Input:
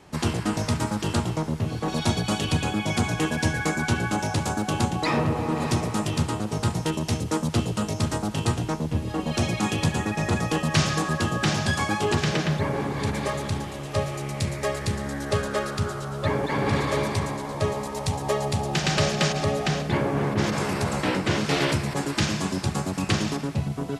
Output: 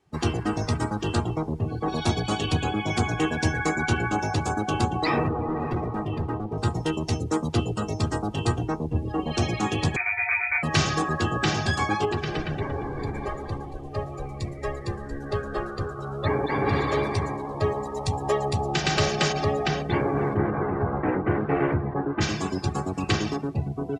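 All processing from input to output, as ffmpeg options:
-filter_complex "[0:a]asettb=1/sr,asplit=3[s0][s1][s2];[s0]atrim=end=5.284[s3];[s1]atrim=start=5.28:end=6.58,asetpts=PTS-STARTPTS,afade=t=in:d=0.004:c=qsin,afade=t=out:st=1.296:d=0.004:c=qsin,equalizer=f=8400:t=o:w=1.7:g=-15,asoftclip=type=hard:threshold=0.0708[s4];[s2]atrim=start=6.576[s5];[s3][s4]acrossfade=d=0.004:c1=hsin:c2=qsin[s6];[s6][s5]acrossfade=d=0.004:c1=qsin:c2=hsin,asettb=1/sr,asplit=3[s7][s8][s9];[s7]atrim=end=9.964[s10];[s8]atrim=start=9.96:end=10.63,asetpts=PTS-STARTPTS,afade=t=in:d=0.004:c=qsin,afade=t=out:st=0.666:d=0.004:c=qsin,bandreject=f=45.89:t=h:w=4,bandreject=f=91.78:t=h:w=4,bandreject=f=137.67:t=h:w=4,bandreject=f=183.56:t=h:w=4,bandreject=f=229.45:t=h:w=4,bandreject=f=275.34:t=h:w=4,bandreject=f=321.23:t=h:w=4,bandreject=f=367.12:t=h:w=4,bandreject=f=413.01:t=h:w=4,bandreject=f=458.9:t=h:w=4,bandreject=f=504.79:t=h:w=4,acrusher=bits=7:dc=4:mix=0:aa=0.000001,lowpass=f=2200:t=q:w=0.5098,lowpass=f=2200:t=q:w=0.6013,lowpass=f=2200:t=q:w=0.9,lowpass=f=2200:t=q:w=2.563,afreqshift=-2600[s11];[s9]atrim=start=10.626[s12];[s10][s11]acrossfade=d=0.004:c1=hsin:c2=qsin[s13];[s13][s12]acrossfade=d=0.004:c1=qsin:c2=hsin,asettb=1/sr,asplit=3[s14][s15][s16];[s14]atrim=end=12.054[s17];[s15]atrim=start=12.05:end=15.99,asetpts=PTS-STARTPTS,afade=t=in:d=0.004:c=qsin,afade=t=out:st=3.936:d=0.004:c=qsin,asplit=6[s18][s19][s20][s21][s22][s23];[s19]adelay=231,afreqshift=-67,volume=0.447[s24];[s20]adelay=462,afreqshift=-134,volume=0.202[s25];[s21]adelay=693,afreqshift=-201,volume=0.0902[s26];[s22]adelay=924,afreqshift=-268,volume=0.0407[s27];[s23]adelay=1155,afreqshift=-335,volume=0.0184[s28];[s18][s24][s25][s26][s27][s28]amix=inputs=6:normalize=0,atrim=end_sample=173754,flanger=delay=5.2:depth=3.5:regen=-88:speed=1.9:shape=triangular[s29];[s16]atrim=start=15.986[s30];[s17][s29]acrossfade=d=0.004:c1=hsin:c2=qsin[s31];[s31][s30]acrossfade=d=0.004:c1=qsin:c2=hsin,asettb=1/sr,asplit=3[s32][s33][s34];[s32]atrim=end=20.374[s35];[s33]atrim=start=20.37:end=22.21,asetpts=PTS-STARTPTS,afade=t=in:d=0.004:c=qsin,afade=t=out:st=1.836:d=0.004:c=qsin,lowpass=1900,aemphasis=mode=reproduction:type=75fm[s36];[s34]atrim=start=22.206[s37];[s35][s36]acrossfade=d=0.004:c1=hsin:c2=qsin[s38];[s38][s37]acrossfade=d=0.004:c1=qsin:c2=hsin,afftdn=nr=19:nf=-36,aecho=1:1:2.6:0.39"

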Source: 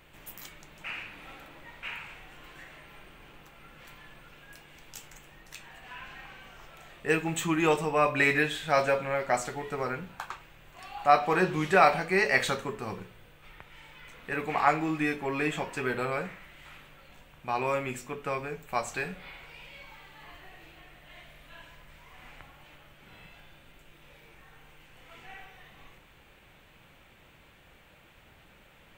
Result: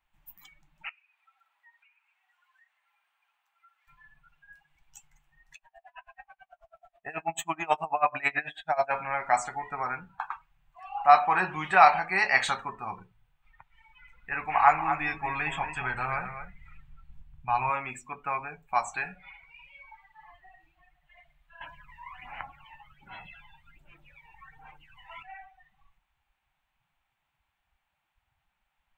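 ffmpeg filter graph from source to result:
-filter_complex "[0:a]asettb=1/sr,asplit=3[s0][s1][s2];[s0]atrim=end=0.894[s3];[s1]atrim=start=0.89:end=3.88,asetpts=PTS-STARTPTS,afade=t=in:d=0.004:c=qsin,afade=t=out:st=2.986:d=0.004:c=qsin,highpass=830,acompressor=threshold=0.00316:ratio=16:attack=3.2:release=140:knee=1:detection=peak[s4];[s2]atrim=start=3.876[s5];[s3][s4]acrossfade=d=0.004:c1=hsin:c2=qsin[s6];[s6][s5]acrossfade=d=0.004:c1=qsin:c2=hsin,asettb=1/sr,asplit=3[s7][s8][s9];[s7]atrim=end=5.554[s10];[s8]atrim=start=5.55:end=8.91,asetpts=PTS-STARTPTS,afade=t=in:d=0.004:c=qsin,afade=t=out:st=3.356:d=0.004:c=qsin,equalizer=f=650:t=o:w=0.37:g=12,aeval=exprs='val(0)*pow(10,-23*(0.5-0.5*cos(2*PI*9.2*n/s))/20)':c=same[s11];[s9]atrim=start=8.906[s12];[s10][s11]acrossfade=d=0.004:c1=hsin:c2=qsin[s13];[s13][s12]acrossfade=d=0.004:c1=qsin:c2=hsin,asettb=1/sr,asplit=3[s14][s15][s16];[s14]atrim=end=13.704[s17];[s15]atrim=start=13.7:end=17.7,asetpts=PTS-STARTPTS,afade=t=in:d=0.004:c=qsin,afade=t=out:st=3.996:d=0.004:c=qsin,asubboost=boost=9:cutoff=110,aecho=1:1:233:0.355,atrim=end_sample=176400[s18];[s16]atrim=start=17.696[s19];[s17][s18]acrossfade=d=0.004:c1=hsin:c2=qsin[s20];[s20][s19]acrossfade=d=0.004:c1=qsin:c2=hsin,asettb=1/sr,asplit=3[s21][s22][s23];[s21]atrim=end=21.614[s24];[s22]atrim=start=21.61:end=25.23,asetpts=PTS-STARTPTS,afade=t=in:d=0.004:c=qsin,afade=t=out:st=3.616:d=0.004:c=qsin,lowshelf=f=240:g=-5,acontrast=63,aphaser=in_gain=1:out_gain=1:delay=1.1:decay=0.46:speed=1.3:type=sinusoidal[s25];[s23]atrim=start=25.226[s26];[s24][s25]acrossfade=d=0.004:c1=hsin:c2=qsin[s27];[s27][s26]acrossfade=d=0.004:c1=qsin:c2=hsin,afftdn=nr=24:nf=-42,lowshelf=f=630:t=q:w=3:g=-8,volume=1.12"

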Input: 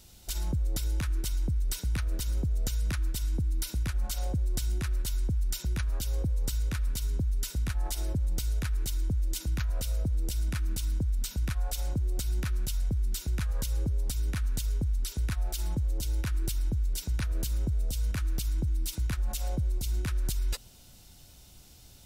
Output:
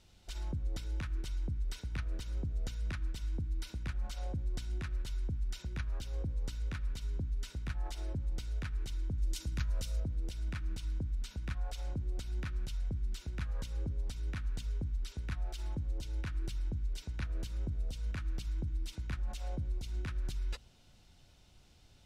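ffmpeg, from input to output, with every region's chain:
-filter_complex "[0:a]asettb=1/sr,asplit=3[s0][s1][s2];[s0]atrim=end=9.184[s3];[s1]atrim=start=9.18:end=10,asetpts=PTS-STARTPTS,afade=t=in:d=0.004:c=qsin,afade=t=out:st=0.816:d=0.004:c=qsin,bass=f=250:g=3,treble=f=4000:g=9,bandreject=f=740:w=11[s4];[s2]atrim=start=9.996[s5];[s3][s4]acrossfade=d=0.004:c1=hsin:c2=qsin[s6];[s6][s5]acrossfade=d=0.004:c1=qsin:c2=hsin,lowpass=2500,aemphasis=mode=production:type=75kf,bandreject=f=60:t=h:w=6,bandreject=f=120:t=h:w=6,bandreject=f=180:t=h:w=6,bandreject=f=240:t=h:w=6,bandreject=f=300:t=h:w=6,volume=0.473"

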